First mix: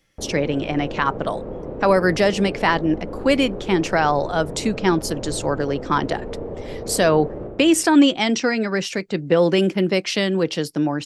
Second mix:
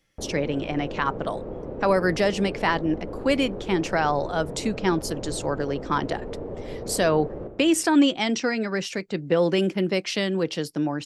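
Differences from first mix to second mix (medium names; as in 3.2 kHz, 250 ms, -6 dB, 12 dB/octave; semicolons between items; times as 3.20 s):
speech -4.5 dB; background: send -7.0 dB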